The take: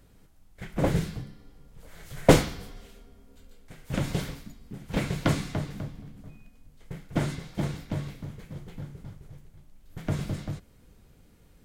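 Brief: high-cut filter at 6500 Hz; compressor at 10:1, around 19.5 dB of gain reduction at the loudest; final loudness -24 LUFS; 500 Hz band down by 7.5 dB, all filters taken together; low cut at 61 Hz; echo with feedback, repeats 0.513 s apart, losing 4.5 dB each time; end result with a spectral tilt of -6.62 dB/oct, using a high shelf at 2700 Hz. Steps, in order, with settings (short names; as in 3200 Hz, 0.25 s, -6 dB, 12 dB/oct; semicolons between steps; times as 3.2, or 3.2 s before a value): HPF 61 Hz; LPF 6500 Hz; bell 500 Hz -9 dB; high shelf 2700 Hz -6.5 dB; compressor 10:1, threshold -34 dBFS; feedback echo 0.513 s, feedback 60%, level -4.5 dB; gain +18 dB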